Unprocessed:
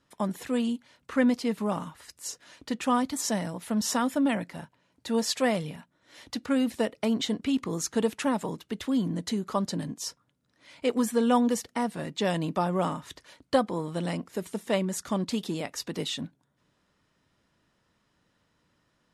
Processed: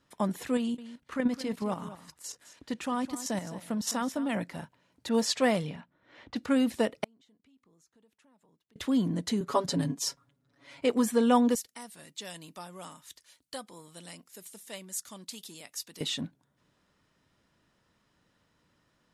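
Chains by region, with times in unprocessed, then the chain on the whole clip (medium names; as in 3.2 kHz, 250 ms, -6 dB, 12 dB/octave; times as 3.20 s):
0.57–4.37 s: level held to a coarse grid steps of 10 dB + delay 211 ms -14 dB
5.09–6.36 s: block-companded coder 7-bit + level-controlled noise filter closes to 2.1 kHz, open at -21.5 dBFS
7.04–8.76 s: compression 5:1, threshold -30 dBFS + inverted gate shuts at -35 dBFS, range -31 dB
9.40–10.85 s: band-stop 200 Hz, Q 6.3 + comb 7.2 ms, depth 98% + tape noise reduction on one side only decoder only
11.55–16.01 s: pre-emphasis filter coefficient 0.9 + transformer saturation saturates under 890 Hz
whole clip: none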